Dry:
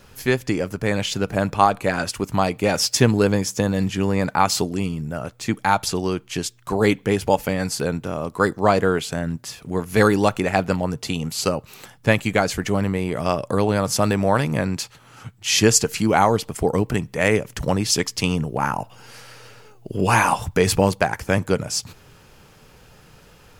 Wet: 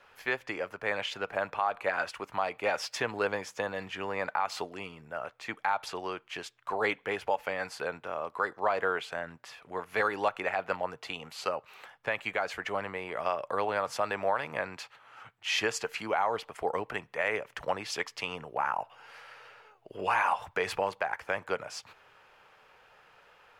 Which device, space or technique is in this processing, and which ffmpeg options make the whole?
DJ mixer with the lows and highs turned down: -filter_complex "[0:a]acrossover=split=540 3100:gain=0.0708 1 0.112[a][b][c];[a][b][c]amix=inputs=3:normalize=0,alimiter=limit=-13.5dB:level=0:latency=1:release=129,volume=-3dB"

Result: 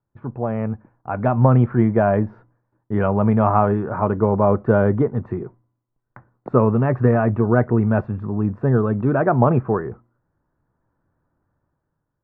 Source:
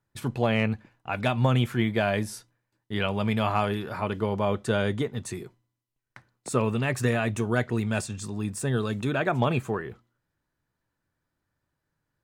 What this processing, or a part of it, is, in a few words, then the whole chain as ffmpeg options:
action camera in a waterproof case: -af "lowpass=f=1.3k:w=0.5412,lowpass=f=1.3k:w=1.3066,dynaudnorm=f=290:g=7:m=12dB" -ar 44100 -c:a aac -b:a 128k

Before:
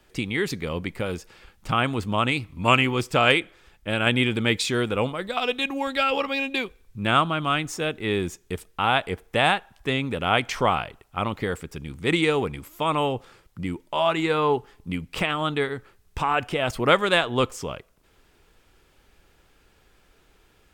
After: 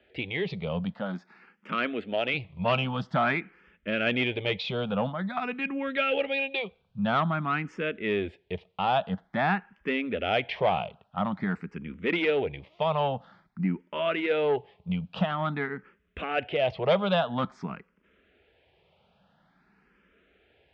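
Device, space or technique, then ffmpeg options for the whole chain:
barber-pole phaser into a guitar amplifier: -filter_complex "[0:a]asettb=1/sr,asplit=3[a][b][c];[a]atrim=end=0.934[d];[b]atrim=start=0.93:end=2.34,asetpts=PTS-STARTPTS,afade=t=in:d=0.004:c=qsin,afade=t=out:st=1.406:d=0.004:c=qsin,highpass=230[e];[c]atrim=start=2.336[f];[d][e]acrossfade=d=0.004:c1=hsin:c2=qsin[g];[g][f]acrossfade=d=0.004:c1=qsin:c2=hsin,asplit=2[h][i];[i]afreqshift=0.49[j];[h][j]amix=inputs=2:normalize=1,asoftclip=type=tanh:threshold=-17.5dB,highpass=93,equalizer=f=110:t=q:w=4:g=-6,equalizer=f=190:t=q:w=4:g=9,equalizer=f=320:t=q:w=4:g=-5,equalizer=f=640:t=q:w=4:g=5,equalizer=f=1.1k:t=q:w=4:g=-4,lowpass=f=3.4k:w=0.5412,lowpass=f=3.4k:w=1.3066"

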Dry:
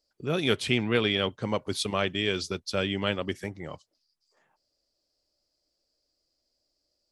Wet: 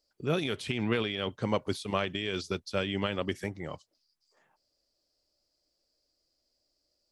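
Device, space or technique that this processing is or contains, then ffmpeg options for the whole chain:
de-esser from a sidechain: -filter_complex "[0:a]asplit=2[a][b];[b]highpass=4.8k,apad=whole_len=313843[c];[a][c]sidechaincompress=threshold=-41dB:ratio=16:attack=5:release=86"

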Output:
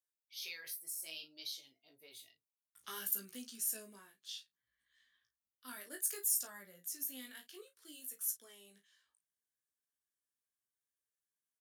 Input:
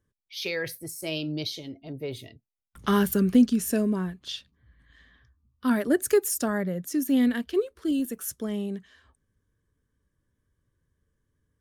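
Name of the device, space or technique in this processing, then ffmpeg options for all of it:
double-tracked vocal: -filter_complex "[0:a]asplit=2[a][b];[b]adelay=35,volume=-10dB[c];[a][c]amix=inputs=2:normalize=0,flanger=delay=15.5:depth=4.4:speed=0.61,aderivative,volume=-2.5dB"

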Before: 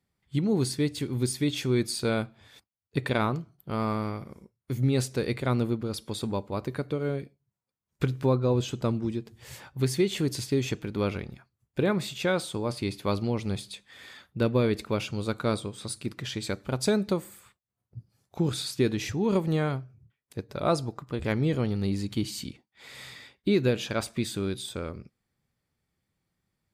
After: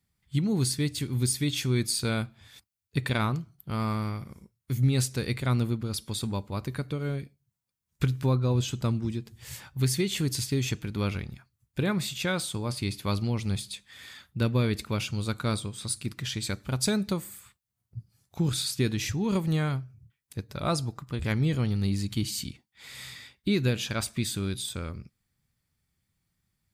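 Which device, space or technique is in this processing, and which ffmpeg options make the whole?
smiley-face EQ: -af "lowshelf=f=180:g=4.5,equalizer=f=470:t=o:w=2:g=-8,highshelf=f=5.8k:g=6,volume=1dB"

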